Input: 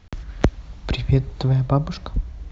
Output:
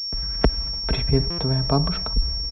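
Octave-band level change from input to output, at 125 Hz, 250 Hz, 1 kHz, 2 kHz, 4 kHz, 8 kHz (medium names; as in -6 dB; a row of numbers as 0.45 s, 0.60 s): -3.5 dB, -0.5 dB, +0.5 dB, 0.0 dB, +14.0 dB, no reading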